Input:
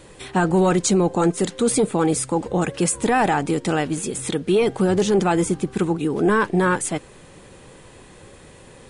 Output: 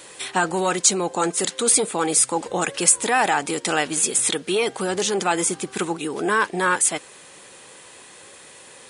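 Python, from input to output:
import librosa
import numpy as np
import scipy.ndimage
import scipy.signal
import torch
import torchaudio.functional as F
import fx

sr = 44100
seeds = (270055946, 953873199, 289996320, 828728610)

p1 = fx.rider(x, sr, range_db=10, speed_s=0.5)
p2 = x + (p1 * librosa.db_to_amplitude(1.0))
p3 = fx.highpass(p2, sr, hz=940.0, slope=6)
p4 = fx.high_shelf(p3, sr, hz=4200.0, db=5.5)
y = p4 * librosa.db_to_amplitude(-3.0)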